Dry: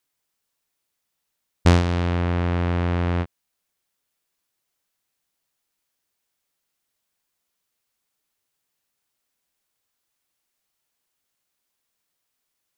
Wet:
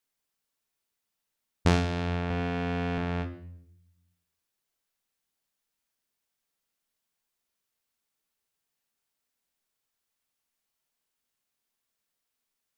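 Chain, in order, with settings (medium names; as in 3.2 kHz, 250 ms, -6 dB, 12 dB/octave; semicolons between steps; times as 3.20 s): 2.30–2.98 s: comb 4.1 ms, depth 64%; reverberation RT60 0.65 s, pre-delay 4 ms, DRR 6.5 dB; trim -6 dB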